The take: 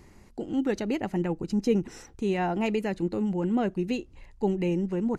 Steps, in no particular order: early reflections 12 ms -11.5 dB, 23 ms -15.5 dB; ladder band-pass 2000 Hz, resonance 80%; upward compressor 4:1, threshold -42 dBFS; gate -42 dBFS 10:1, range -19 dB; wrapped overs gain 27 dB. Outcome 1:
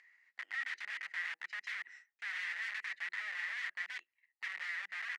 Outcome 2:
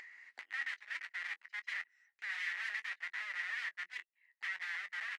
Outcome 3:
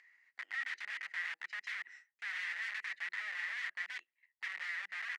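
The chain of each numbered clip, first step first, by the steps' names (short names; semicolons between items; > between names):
early reflections > gate > upward compressor > wrapped overs > ladder band-pass; wrapped overs > ladder band-pass > gate > early reflections > upward compressor; gate > early reflections > upward compressor > wrapped overs > ladder band-pass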